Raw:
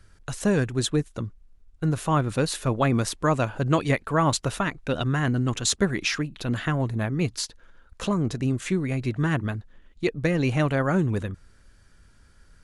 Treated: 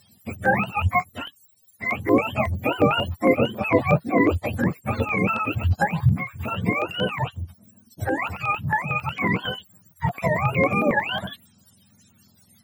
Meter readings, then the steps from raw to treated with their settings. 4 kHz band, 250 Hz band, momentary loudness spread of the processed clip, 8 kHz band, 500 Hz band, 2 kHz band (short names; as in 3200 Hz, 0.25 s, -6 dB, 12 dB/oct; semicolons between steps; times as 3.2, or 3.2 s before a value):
0.0 dB, +0.5 dB, 10 LU, under -15 dB, +3.0 dB, +6.5 dB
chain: spectrum mirrored in octaves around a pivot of 570 Hz; dynamic EQ 500 Hz, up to +6 dB, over -41 dBFS, Q 0.93; stepped notch 11 Hz 260–4800 Hz; gain +3.5 dB